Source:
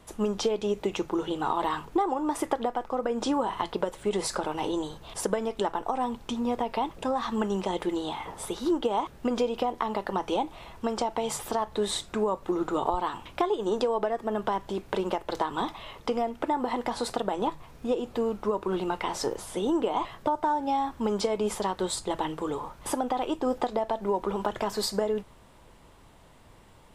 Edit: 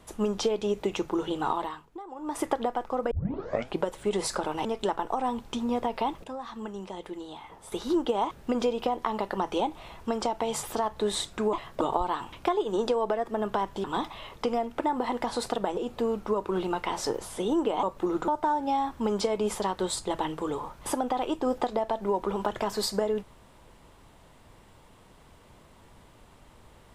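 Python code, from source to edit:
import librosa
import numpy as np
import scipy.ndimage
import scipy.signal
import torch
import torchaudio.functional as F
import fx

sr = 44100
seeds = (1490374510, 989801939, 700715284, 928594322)

y = fx.edit(x, sr, fx.fade_down_up(start_s=1.52, length_s=0.89, db=-16.5, fade_s=0.39, curve='qua'),
    fx.tape_start(start_s=3.11, length_s=0.73),
    fx.cut(start_s=4.65, length_s=0.76),
    fx.clip_gain(start_s=7.0, length_s=1.48, db=-9.5),
    fx.swap(start_s=12.29, length_s=0.45, other_s=20.0, other_length_s=0.28),
    fx.cut(start_s=14.77, length_s=0.71),
    fx.cut(start_s=17.41, length_s=0.53), tone=tone)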